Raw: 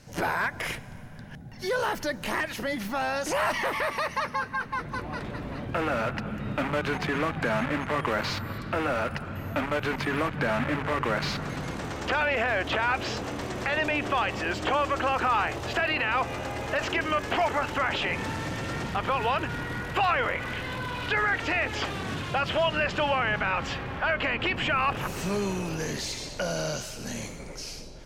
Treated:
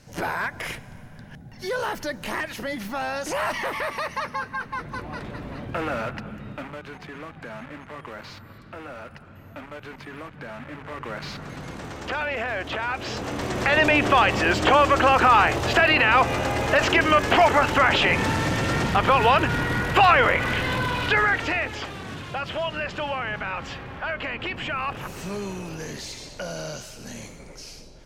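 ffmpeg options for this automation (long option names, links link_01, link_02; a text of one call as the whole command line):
ffmpeg -i in.wav -af "volume=19.5dB,afade=type=out:start_time=5.92:duration=0.89:silence=0.281838,afade=type=in:start_time=10.65:duration=1.19:silence=0.354813,afade=type=in:start_time=12.98:duration=0.87:silence=0.298538,afade=type=out:start_time=20.76:duration=1.06:silence=0.266073" out.wav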